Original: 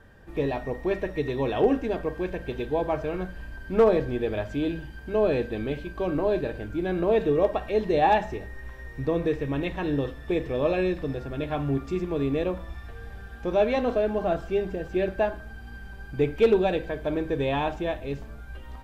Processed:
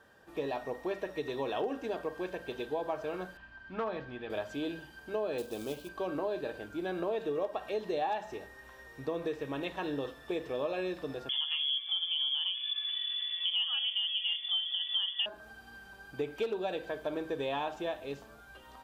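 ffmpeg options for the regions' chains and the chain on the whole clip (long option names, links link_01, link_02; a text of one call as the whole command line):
ffmpeg -i in.wav -filter_complex "[0:a]asettb=1/sr,asplit=3[link_01][link_02][link_03];[link_01]atrim=end=3.374[link_04];[link_02]atrim=start=3.37:end=4.3,asetpts=PTS-STARTPTS,afade=type=in:duration=0.004:curve=qsin,afade=type=out:start_time=0.926:duration=0.004:curve=qsin,lowpass=2900,equalizer=frequency=450:width=1.1:gain=-11[link_05];[link_03]atrim=start=4.296[link_06];[link_04][link_05]acrossfade=duration=0.004:curve1=hsin:curve2=qsin[link_07];[link_07][link_06]acrossfade=duration=0.004:curve1=qsin:curve2=hsin,asettb=1/sr,asplit=3[link_08][link_09][link_10];[link_08]atrim=end=5.384[link_11];[link_09]atrim=start=5.38:end=5.89,asetpts=PTS-STARTPTS,afade=type=in:duration=0.004:curve=qsin,afade=type=out:start_time=0.506:duration=0.004:curve=qsin,acrusher=bits=5:mode=log:mix=0:aa=0.000001,equalizer=frequency=1800:width=2.1:gain=-10.5[link_12];[link_10]atrim=start=5.886[link_13];[link_11][link_12]acrossfade=duration=0.004:curve1=hsin:curve2=qsin[link_14];[link_14][link_13]acrossfade=duration=0.004:curve1=qsin:curve2=hsin,asettb=1/sr,asplit=3[link_15][link_16][link_17];[link_15]atrim=end=11.294[link_18];[link_16]atrim=start=11.29:end=15.26,asetpts=PTS-STARTPTS,afade=type=in:duration=0.004:curve=qsin,afade=type=out:start_time=3.966:duration=0.004:curve=qsin,tiltshelf=frequency=1400:gain=4,acompressor=mode=upward:threshold=-28dB:ratio=2.5:attack=3.2:release=140:knee=2.83:detection=peak,lowpass=frequency=3000:width_type=q:width=0.5098,lowpass=frequency=3000:width_type=q:width=0.6013,lowpass=frequency=3000:width_type=q:width=0.9,lowpass=frequency=3000:width_type=q:width=2.563,afreqshift=-3500[link_19];[link_17]atrim=start=15.256[link_20];[link_18][link_19]acrossfade=duration=0.004:curve1=hsin:curve2=qsin[link_21];[link_21][link_20]acrossfade=duration=0.004:curve1=qsin:curve2=hsin,highpass=frequency=750:poles=1,equalizer=frequency=2100:width=2.4:gain=-7.5,acompressor=threshold=-30dB:ratio=6" out.wav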